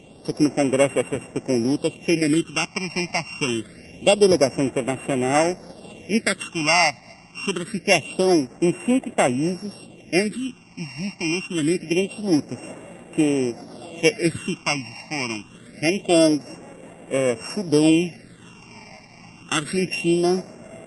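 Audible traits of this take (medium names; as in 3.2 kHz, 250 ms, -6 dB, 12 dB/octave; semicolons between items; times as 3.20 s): a buzz of ramps at a fixed pitch in blocks of 16 samples; phasing stages 8, 0.25 Hz, lowest notch 440–4900 Hz; MP3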